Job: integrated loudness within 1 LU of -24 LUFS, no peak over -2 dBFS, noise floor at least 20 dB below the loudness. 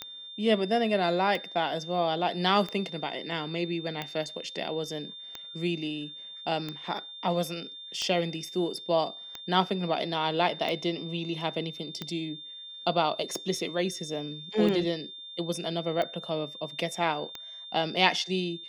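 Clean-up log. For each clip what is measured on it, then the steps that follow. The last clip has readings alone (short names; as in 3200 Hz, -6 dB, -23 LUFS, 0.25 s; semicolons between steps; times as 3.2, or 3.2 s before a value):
clicks 15; steady tone 3600 Hz; tone level -41 dBFS; loudness -30.0 LUFS; peak -5.0 dBFS; loudness target -24.0 LUFS
-> de-click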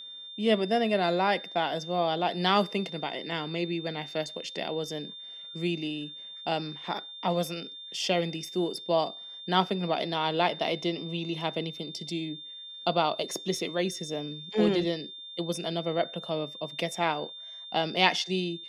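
clicks 1; steady tone 3600 Hz; tone level -41 dBFS
-> notch 3600 Hz, Q 30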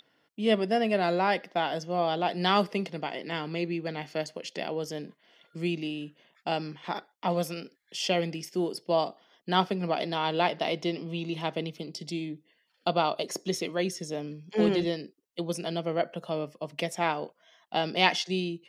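steady tone none; loudness -30.0 LUFS; peak -5.5 dBFS; loudness target -24.0 LUFS
-> gain +6 dB; limiter -2 dBFS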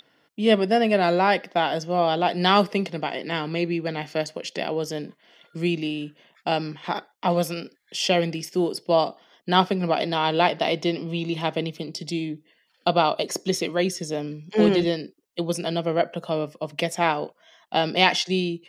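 loudness -24.0 LUFS; peak -2.0 dBFS; noise floor -66 dBFS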